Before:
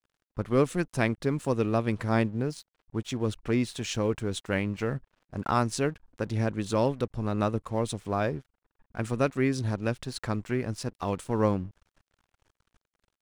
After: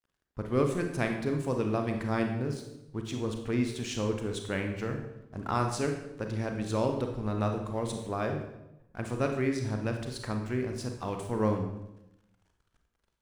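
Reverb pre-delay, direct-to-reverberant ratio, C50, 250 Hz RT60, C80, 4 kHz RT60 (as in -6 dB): 30 ms, 3.5 dB, 6.0 dB, 1.1 s, 8.5 dB, 0.70 s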